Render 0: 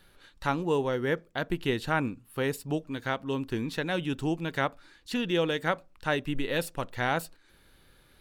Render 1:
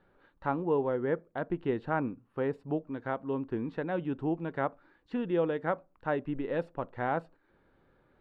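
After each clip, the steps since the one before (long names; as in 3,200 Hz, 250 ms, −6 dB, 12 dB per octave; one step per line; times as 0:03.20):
low-pass filter 1,100 Hz 12 dB per octave
low-shelf EQ 110 Hz −12 dB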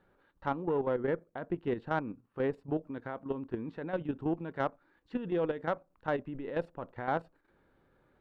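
output level in coarse steps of 10 dB
harmonic generator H 4 −24 dB, 5 −27 dB, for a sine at −17.5 dBFS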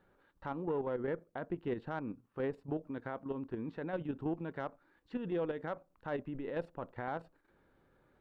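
brickwall limiter −26 dBFS, peak gain reduction 8.5 dB
level −1 dB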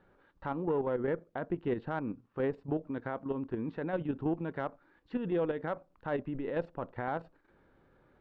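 high-frequency loss of the air 120 metres
level +4.5 dB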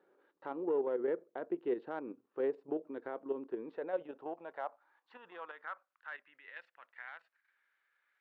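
high-pass filter sweep 380 Hz → 1,900 Hz, 0:03.45–0:06.41
level −7.5 dB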